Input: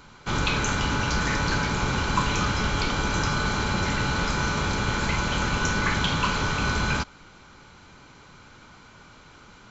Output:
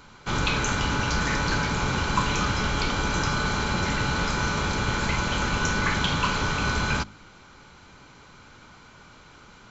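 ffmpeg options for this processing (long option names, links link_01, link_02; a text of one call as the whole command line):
ffmpeg -i in.wav -af "bandreject=frequency=51.29:width_type=h:width=4,bandreject=frequency=102.58:width_type=h:width=4,bandreject=frequency=153.87:width_type=h:width=4,bandreject=frequency=205.16:width_type=h:width=4,bandreject=frequency=256.45:width_type=h:width=4,bandreject=frequency=307.74:width_type=h:width=4,bandreject=frequency=359.03:width_type=h:width=4" out.wav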